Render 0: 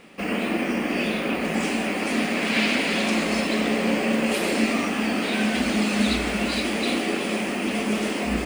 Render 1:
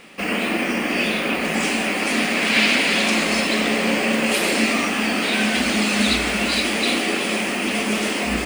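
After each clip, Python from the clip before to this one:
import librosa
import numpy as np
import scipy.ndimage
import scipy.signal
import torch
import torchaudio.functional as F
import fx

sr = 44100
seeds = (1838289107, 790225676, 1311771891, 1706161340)

y = fx.tilt_shelf(x, sr, db=-3.5, hz=970.0)
y = y * 10.0 ** (4.0 / 20.0)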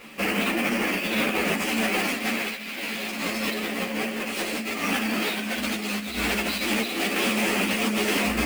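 y = fx.over_compress(x, sr, threshold_db=-23.0, ratio=-0.5)
y = fx.sample_hold(y, sr, seeds[0], rate_hz=18000.0, jitter_pct=20)
y = fx.ensemble(y, sr)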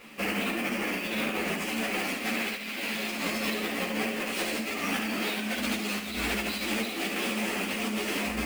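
y = fx.rider(x, sr, range_db=3, speed_s=0.5)
y = y + 10.0 ** (-8.5 / 20.0) * np.pad(y, (int(70 * sr / 1000.0), 0))[:len(y)]
y = y * 10.0 ** (-5.0 / 20.0)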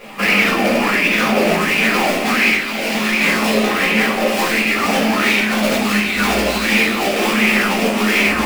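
y = fx.self_delay(x, sr, depth_ms=0.12)
y = fx.room_shoebox(y, sr, seeds[1], volume_m3=140.0, walls='mixed', distance_m=1.3)
y = fx.bell_lfo(y, sr, hz=1.4, low_hz=570.0, high_hz=2400.0, db=11)
y = y * 10.0 ** (7.5 / 20.0)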